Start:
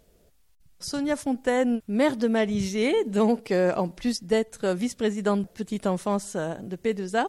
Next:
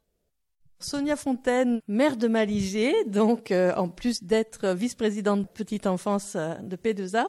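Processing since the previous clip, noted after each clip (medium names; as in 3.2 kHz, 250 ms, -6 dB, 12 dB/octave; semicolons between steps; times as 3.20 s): spectral noise reduction 15 dB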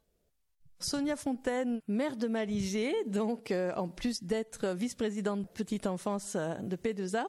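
compression, threshold -29 dBFS, peak gain reduction 12 dB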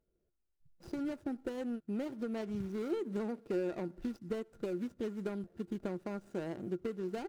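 median filter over 41 samples; small resonant body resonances 350/1400 Hz, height 12 dB, ringing for 95 ms; trim -5.5 dB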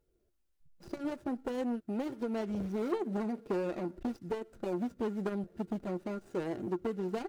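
flange 0.47 Hz, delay 2.2 ms, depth 3.4 ms, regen -50%; transformer saturation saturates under 590 Hz; trim +8.5 dB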